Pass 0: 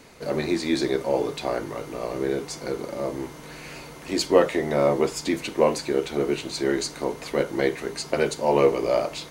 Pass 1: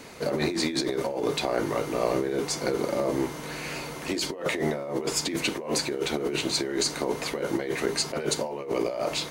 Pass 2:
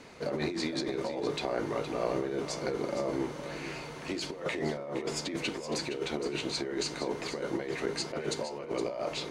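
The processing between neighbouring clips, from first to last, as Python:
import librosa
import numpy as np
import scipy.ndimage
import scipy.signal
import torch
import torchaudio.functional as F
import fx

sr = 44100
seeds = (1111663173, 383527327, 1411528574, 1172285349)

y1 = fx.low_shelf(x, sr, hz=64.0, db=-9.0)
y1 = fx.over_compress(y1, sr, threshold_db=-29.0, ratio=-1.0)
y1 = y1 * 10.0 ** (1.0 / 20.0)
y2 = fx.air_absorb(y1, sr, metres=58.0)
y2 = y2 + 10.0 ** (-10.5 / 20.0) * np.pad(y2, (int(466 * sr / 1000.0), 0))[:len(y2)]
y2 = y2 * 10.0 ** (-5.5 / 20.0)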